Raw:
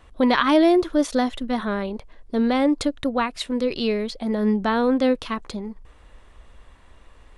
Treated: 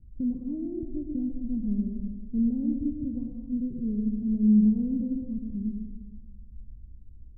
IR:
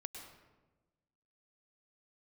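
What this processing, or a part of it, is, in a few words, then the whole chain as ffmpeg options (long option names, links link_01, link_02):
club heard from the street: -filter_complex "[0:a]alimiter=limit=-13.5dB:level=0:latency=1:release=122,lowpass=frequency=210:width=0.5412,lowpass=frequency=210:width=1.3066[link_01];[1:a]atrim=start_sample=2205[link_02];[link_01][link_02]afir=irnorm=-1:irlink=0,volume=6.5dB"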